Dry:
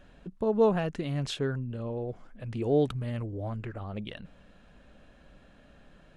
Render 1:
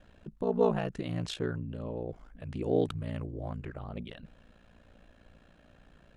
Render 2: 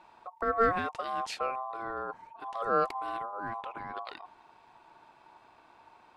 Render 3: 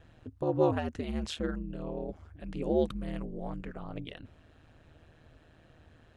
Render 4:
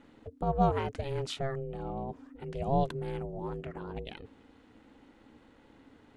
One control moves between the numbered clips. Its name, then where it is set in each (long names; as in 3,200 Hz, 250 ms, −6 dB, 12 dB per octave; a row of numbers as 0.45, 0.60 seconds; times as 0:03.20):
ring modulation, frequency: 29, 910, 78, 270 Hertz